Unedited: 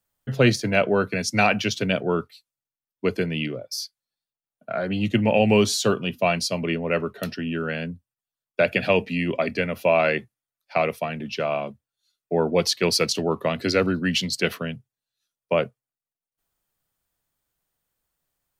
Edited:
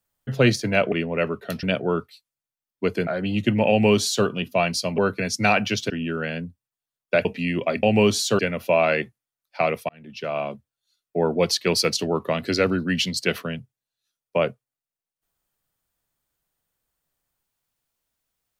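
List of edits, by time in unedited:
0.92–1.84 s: swap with 6.65–7.36 s
3.28–4.74 s: delete
5.37–5.93 s: copy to 9.55 s
8.71–8.97 s: delete
11.05–11.61 s: fade in

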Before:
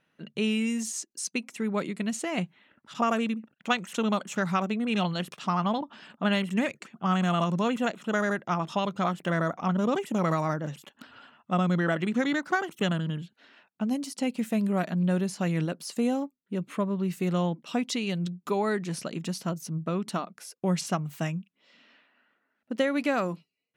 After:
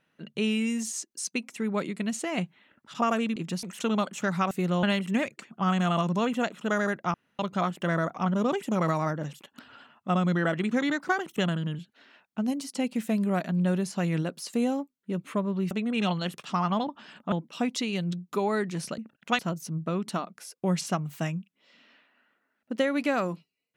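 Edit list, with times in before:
3.36–3.77 s: swap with 19.12–19.39 s
4.65–6.26 s: swap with 17.14–17.46 s
8.57–8.82 s: room tone

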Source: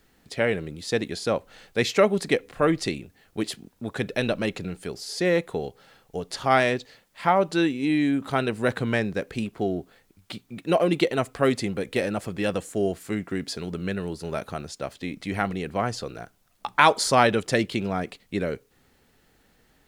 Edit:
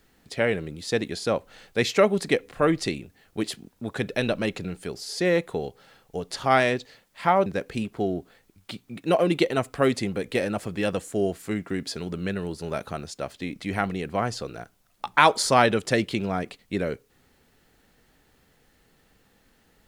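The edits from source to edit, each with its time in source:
7.46–9.07 s: delete

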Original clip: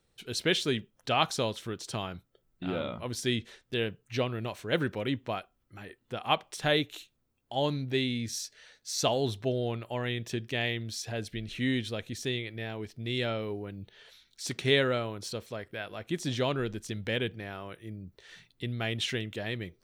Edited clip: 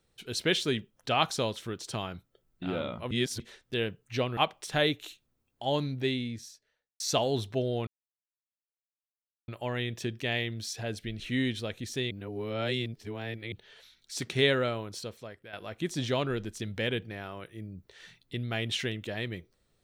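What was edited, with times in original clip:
3.11–3.40 s: reverse
4.37–6.27 s: delete
7.83–8.90 s: studio fade out
9.77 s: insert silence 1.61 s
12.40–13.81 s: reverse
15.09–15.82 s: fade out, to -11 dB

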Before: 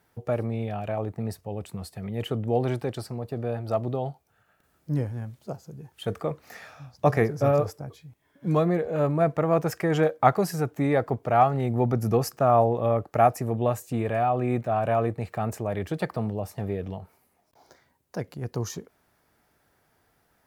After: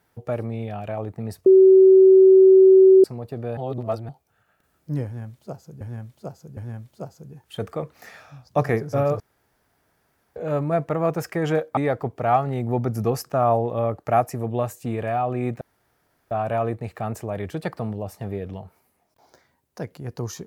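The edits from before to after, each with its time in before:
1.46–3.04 s: bleep 380 Hz -8 dBFS
3.57–4.09 s: reverse
5.05–5.81 s: loop, 3 plays
7.68–8.84 s: room tone
10.25–10.84 s: delete
14.68 s: insert room tone 0.70 s

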